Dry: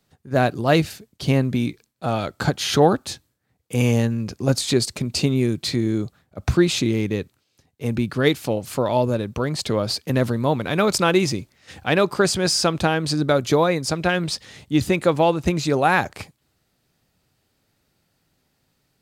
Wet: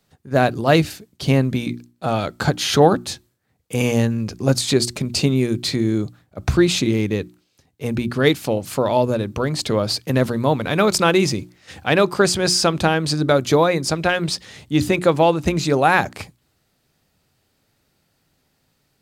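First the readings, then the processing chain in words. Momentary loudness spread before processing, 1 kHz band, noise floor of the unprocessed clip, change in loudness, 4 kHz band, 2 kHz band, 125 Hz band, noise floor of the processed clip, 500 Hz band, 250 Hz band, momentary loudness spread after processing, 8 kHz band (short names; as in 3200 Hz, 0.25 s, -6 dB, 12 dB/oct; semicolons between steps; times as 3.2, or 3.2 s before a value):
10 LU, +2.5 dB, -70 dBFS, +2.0 dB, +2.5 dB, +2.5 dB, +1.5 dB, -67 dBFS, +2.5 dB, +1.5 dB, 11 LU, +2.5 dB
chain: notches 60/120/180/240/300/360 Hz; gain +2.5 dB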